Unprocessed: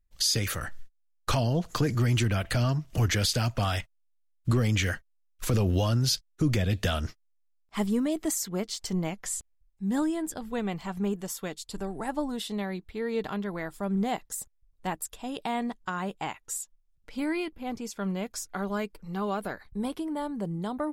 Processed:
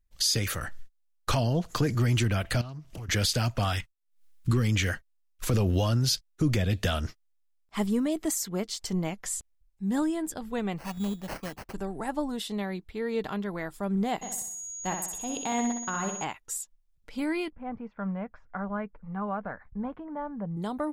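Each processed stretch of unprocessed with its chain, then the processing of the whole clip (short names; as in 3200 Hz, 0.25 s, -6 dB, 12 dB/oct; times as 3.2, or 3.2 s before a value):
2.61–3.09 compressor 4:1, threshold -39 dBFS + Doppler distortion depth 0.21 ms
3.73–4.72 expander -57 dBFS + bell 650 Hz -15 dB 0.49 oct + backwards sustainer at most 120 dB/s
10.78–11.74 Butterworth band-stop 1500 Hz, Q 6.9 + bell 400 Hz -9 dB 0.58 oct + sample-rate reducer 3600 Hz
14.21–16.23 transient shaper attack -1 dB, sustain -7 dB + whine 6700 Hz -40 dBFS + flutter echo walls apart 10.8 m, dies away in 0.63 s
17.5–20.57 LPF 1800 Hz 24 dB/oct + bell 360 Hz -14 dB 0.46 oct
whole clip: dry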